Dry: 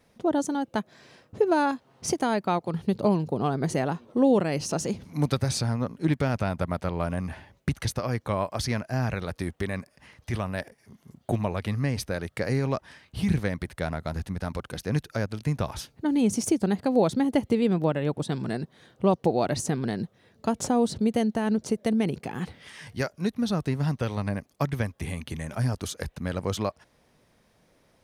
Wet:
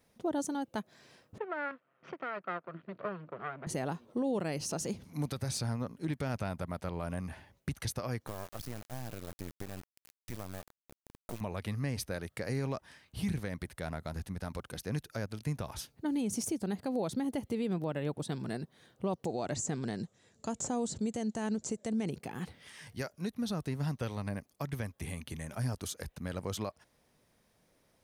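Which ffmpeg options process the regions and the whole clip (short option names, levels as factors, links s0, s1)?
-filter_complex "[0:a]asettb=1/sr,asplit=3[s0][s1][s2];[s0]atrim=end=1.384[s3];[s1]atrim=start=1.38:end=3.67,asetpts=PTS-STARTPTS,afade=t=in:d=0.004:c=qsin,afade=t=out:st=2.286:d=0.004:c=qsin,aecho=1:1:1.6:0.36,atrim=end_sample=100989,aeval=exprs='max(val(0),0)':c=same,highpass=f=170:w=0.5412,highpass=f=170:w=1.3066,equalizer=f=220:t=q:w=4:g=-7,equalizer=f=440:t=q:w=4:g=-4,equalizer=f=800:t=q:w=4:g=-8,equalizer=f=1400:t=q:w=4:g=5,lowpass=f=2600:w=0.5412,lowpass=f=2600:w=1.3066[s4];[s2]atrim=start=3.666[s5];[s3][s4]acrossfade=d=0.004:c1=hsin:c2=qsin[s6];[s6][s5]acrossfade=d=0.004:c1=qsin:c2=hsin,asettb=1/sr,asplit=3[s7][s8][s9];[s7]atrim=end=8.274[s10];[s8]atrim=start=8.27:end=11.41,asetpts=PTS-STARTPTS,afade=t=in:d=0.004:c=qsin,afade=t=out:st=3.136:d=0.004:c=qsin,highshelf=f=5000:g=8,acrossover=split=910|6500[s11][s12][s13];[s11]acompressor=threshold=0.0355:ratio=4[s14];[s12]acompressor=threshold=0.00562:ratio=4[s15];[s13]acompressor=threshold=0.001:ratio=4[s16];[s14][s15][s16]amix=inputs=3:normalize=0,acrusher=bits=4:dc=4:mix=0:aa=0.000001[s17];[s9]atrim=start=11.406[s18];[s10][s17]acrossfade=d=0.004:c1=hsin:c2=qsin[s19];[s19][s18]acrossfade=d=0.004:c1=qsin:c2=hsin,asettb=1/sr,asplit=3[s20][s21][s22];[s20]atrim=end=19.254[s23];[s21]atrim=start=19.25:end=22.11,asetpts=PTS-STARTPTS,afade=t=in:d=0.004:c=qsin,afade=t=out:st=2.856:d=0.004:c=qsin,acrossover=split=2500[s24][s25];[s25]acompressor=threshold=0.00891:ratio=4:attack=1:release=60[s26];[s24][s26]amix=inputs=2:normalize=0,lowpass=f=7300:t=q:w=8.2[s27];[s22]atrim=start=22.106[s28];[s23][s27]acrossfade=d=0.004:c1=hsin:c2=qsin[s29];[s29][s28]acrossfade=d=0.004:c1=qsin:c2=hsin,deesser=0.5,highshelf=f=8100:g=9,alimiter=limit=0.133:level=0:latency=1:release=71,volume=0.422"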